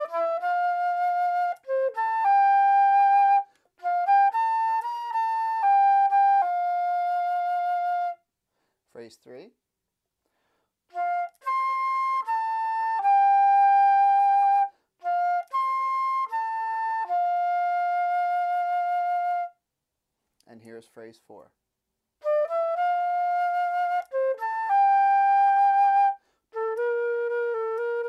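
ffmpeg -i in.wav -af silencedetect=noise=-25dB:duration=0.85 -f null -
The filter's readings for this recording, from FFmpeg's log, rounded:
silence_start: 8.10
silence_end: 10.98 | silence_duration: 2.88
silence_start: 19.44
silence_end: 22.26 | silence_duration: 2.83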